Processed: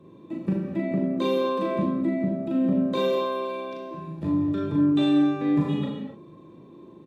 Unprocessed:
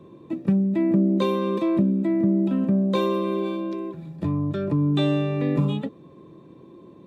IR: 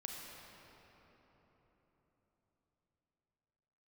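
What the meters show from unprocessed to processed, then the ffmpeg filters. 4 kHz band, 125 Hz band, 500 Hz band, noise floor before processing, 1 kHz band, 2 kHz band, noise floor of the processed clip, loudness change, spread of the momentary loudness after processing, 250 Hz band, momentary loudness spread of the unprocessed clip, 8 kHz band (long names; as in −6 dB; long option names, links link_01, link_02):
−0.5 dB, −6.5 dB, −1.0 dB, −48 dBFS, +0.5 dB, 0.0 dB, −49 dBFS, −2.0 dB, 13 LU, −1.5 dB, 10 LU, can't be measured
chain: -filter_complex "[0:a]asplit=2[link_01][link_02];[link_02]adelay=38,volume=-2.5dB[link_03];[link_01][link_03]amix=inputs=2:normalize=0[link_04];[1:a]atrim=start_sample=2205,afade=type=out:start_time=0.37:duration=0.01,atrim=end_sample=16758,asetrate=52920,aresample=44100[link_05];[link_04][link_05]afir=irnorm=-1:irlink=0,volume=1.5dB"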